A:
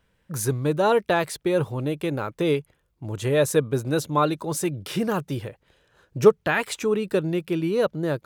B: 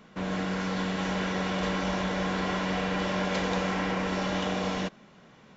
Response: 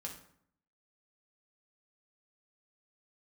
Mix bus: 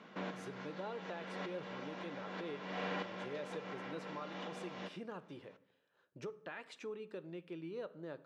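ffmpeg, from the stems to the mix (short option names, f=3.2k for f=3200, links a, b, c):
-filter_complex "[0:a]alimiter=limit=-14dB:level=0:latency=1:release=286,volume=-18dB,asplit=3[a][b][c];[b]volume=-6dB[d];[1:a]volume=-1.5dB,asplit=2[e][f];[f]volume=-14.5dB[g];[c]apad=whole_len=245493[h];[e][h]sidechaincompress=threshold=-58dB:ratio=8:attack=12:release=200[i];[2:a]atrim=start_sample=2205[j];[d][g]amix=inputs=2:normalize=0[k];[k][j]afir=irnorm=-1:irlink=0[l];[a][i][l]amix=inputs=3:normalize=0,highpass=240,lowpass=4.3k,acompressor=threshold=-49dB:ratio=1.5"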